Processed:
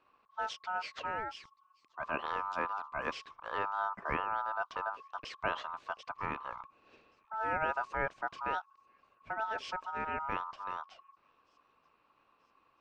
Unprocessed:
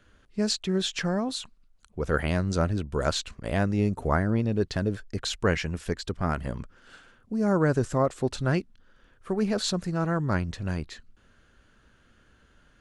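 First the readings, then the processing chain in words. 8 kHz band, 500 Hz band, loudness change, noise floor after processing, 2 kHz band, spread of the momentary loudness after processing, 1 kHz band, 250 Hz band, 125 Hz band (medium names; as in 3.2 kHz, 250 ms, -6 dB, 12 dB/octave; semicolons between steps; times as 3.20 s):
under -20 dB, -13.5 dB, -9.5 dB, -72 dBFS, -3.0 dB, 10 LU, +0.5 dB, -23.0 dB, -26.5 dB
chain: ring modulator 1.1 kHz; distance through air 190 m; on a send: feedback echo behind a high-pass 933 ms, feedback 50%, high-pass 4.8 kHz, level -22 dB; on the sum: trim -6.5 dB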